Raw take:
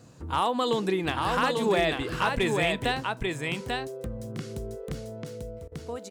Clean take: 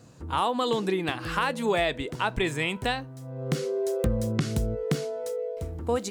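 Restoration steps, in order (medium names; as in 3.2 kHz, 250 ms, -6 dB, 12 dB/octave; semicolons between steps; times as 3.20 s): clip repair -16 dBFS; interpolate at 5.68 s, 36 ms; inverse comb 842 ms -3.5 dB; trim 0 dB, from 3.03 s +10 dB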